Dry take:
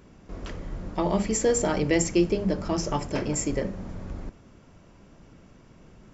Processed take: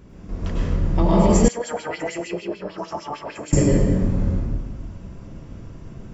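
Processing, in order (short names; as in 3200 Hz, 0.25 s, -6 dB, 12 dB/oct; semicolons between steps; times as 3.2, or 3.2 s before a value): low shelf 250 Hz +9.5 dB; reverb RT60 1.5 s, pre-delay 93 ms, DRR -5 dB; 1.48–3.53 LFO band-pass sine 6.6 Hz 700–4000 Hz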